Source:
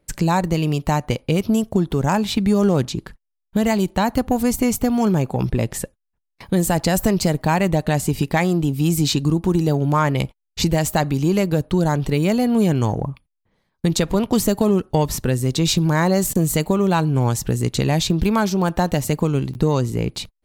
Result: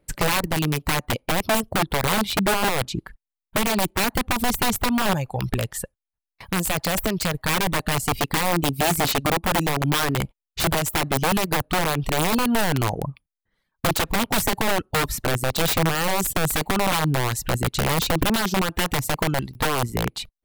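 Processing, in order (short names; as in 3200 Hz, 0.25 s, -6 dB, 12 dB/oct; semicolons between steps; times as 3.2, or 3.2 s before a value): 5.13–7.49 bell 280 Hz -8.5 dB 1.6 oct; reverb removal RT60 0.77 s; wrapped overs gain 14.5 dB; bell 6000 Hz -4.5 dB 0.9 oct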